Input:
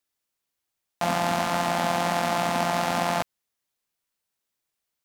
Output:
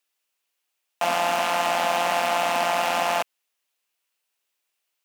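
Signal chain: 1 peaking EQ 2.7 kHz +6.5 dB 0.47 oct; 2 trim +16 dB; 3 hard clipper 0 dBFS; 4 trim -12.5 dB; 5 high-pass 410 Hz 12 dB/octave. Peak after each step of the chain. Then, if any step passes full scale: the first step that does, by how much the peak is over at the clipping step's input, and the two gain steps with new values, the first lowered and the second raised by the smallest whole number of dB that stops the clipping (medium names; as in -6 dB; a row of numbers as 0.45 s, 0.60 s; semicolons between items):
-8.0 dBFS, +8.0 dBFS, 0.0 dBFS, -12.5 dBFS, -10.5 dBFS; step 2, 8.0 dB; step 2 +8 dB, step 4 -4.5 dB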